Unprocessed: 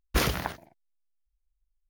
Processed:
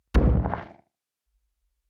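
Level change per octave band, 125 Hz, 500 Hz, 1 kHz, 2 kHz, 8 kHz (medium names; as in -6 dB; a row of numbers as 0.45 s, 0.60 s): +10.0 dB, +4.0 dB, +1.0 dB, -6.0 dB, under -15 dB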